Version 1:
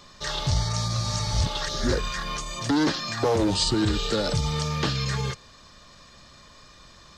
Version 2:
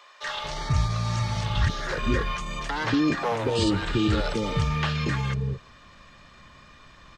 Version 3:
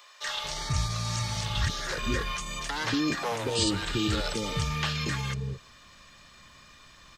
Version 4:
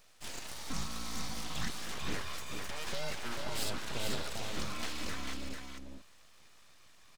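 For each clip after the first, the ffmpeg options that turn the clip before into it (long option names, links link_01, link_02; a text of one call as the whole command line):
ffmpeg -i in.wav -filter_complex "[0:a]highshelf=frequency=3500:width_type=q:width=1.5:gain=-8,acrossover=split=510[link_01][link_02];[link_01]adelay=230[link_03];[link_03][link_02]amix=inputs=2:normalize=0,volume=1dB" out.wav
ffmpeg -i in.wav -af "crystalizer=i=3.5:c=0,volume=-5.5dB" out.wav
ffmpeg -i in.wav -filter_complex "[0:a]aeval=exprs='abs(val(0))':channel_layout=same,asplit=2[link_01][link_02];[link_02]aecho=0:1:444:0.562[link_03];[link_01][link_03]amix=inputs=2:normalize=0,volume=-7.5dB" out.wav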